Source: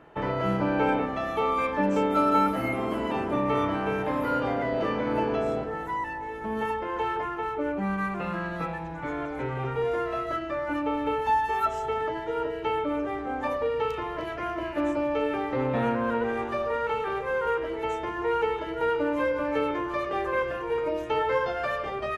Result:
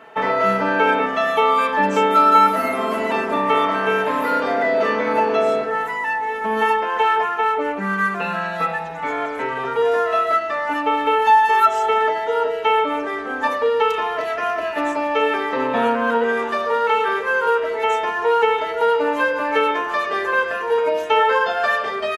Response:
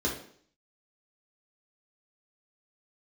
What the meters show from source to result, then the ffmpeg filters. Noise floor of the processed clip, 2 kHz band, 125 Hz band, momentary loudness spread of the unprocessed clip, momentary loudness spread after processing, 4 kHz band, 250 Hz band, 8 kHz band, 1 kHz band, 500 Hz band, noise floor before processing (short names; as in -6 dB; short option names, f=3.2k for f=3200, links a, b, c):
-27 dBFS, +12.5 dB, -3.0 dB, 6 LU, 7 LU, +12.5 dB, +1.5 dB, n/a, +11.0 dB, +7.5 dB, -35 dBFS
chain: -filter_complex "[0:a]highpass=f=740:p=1,aecho=1:1:4.5:0.82,asplit=2[a][b];[b]alimiter=limit=-19dB:level=0:latency=1:release=183,volume=-1dB[c];[a][c]amix=inputs=2:normalize=0,volume=4.5dB"